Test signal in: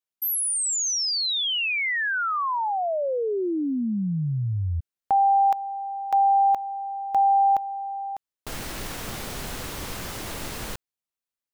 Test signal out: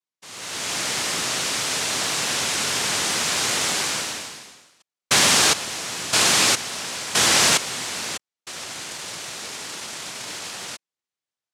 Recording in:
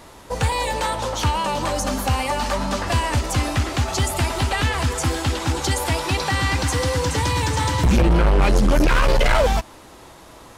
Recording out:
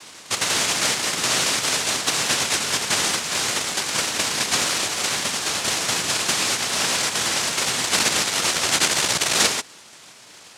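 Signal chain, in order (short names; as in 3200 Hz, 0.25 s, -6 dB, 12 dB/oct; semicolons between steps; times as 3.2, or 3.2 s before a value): HPF 210 Hz 24 dB/oct; in parallel at +2 dB: vocal rider within 4 dB 2 s; on the sum: noise vocoder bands 1; gain -6 dB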